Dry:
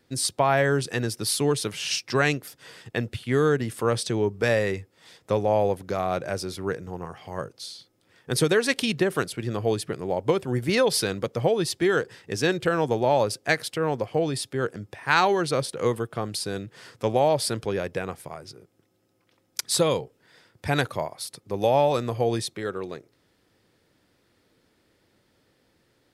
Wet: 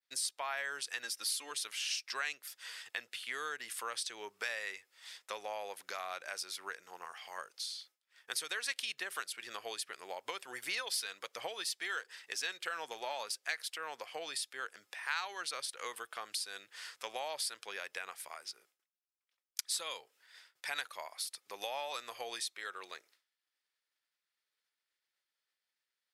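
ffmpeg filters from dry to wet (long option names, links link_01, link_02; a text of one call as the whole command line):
ffmpeg -i in.wav -filter_complex "[0:a]asettb=1/sr,asplit=3[link_01][link_02][link_03];[link_01]atrim=end=1.034[link_04];[link_02]atrim=start=1.03:end=1.51,asetpts=PTS-STARTPTS,afade=type=in:duration=0.004:curve=qsin,afade=type=out:start_time=0.476:duration=0.004:curve=qsin,aecho=1:1:3.7:0.65,atrim=end_sample=21168[link_05];[link_03]atrim=start=1.506[link_06];[link_04][link_05]acrossfade=duration=0.004:curve1=hsin:curve2=qsin[link_07];[link_07][link_06]acrossfade=duration=0.004:curve1=qsin:curve2=hsin,asplit=3[link_08][link_09][link_10];[link_08]afade=type=out:start_time=10.48:duration=0.02[link_11];[link_09]aphaser=in_gain=1:out_gain=1:delay=4.5:decay=0.26:speed=1.4:type=sinusoidal,afade=type=in:start_time=10.48:duration=0.02,afade=type=out:start_time=13.77:duration=0.02[link_12];[link_10]afade=type=in:start_time=13.77:duration=0.02[link_13];[link_11][link_12][link_13]amix=inputs=3:normalize=0,agate=range=-33dB:threshold=-53dB:ratio=3:detection=peak,highpass=1500,acompressor=threshold=-41dB:ratio=2.5,volume=1.5dB" out.wav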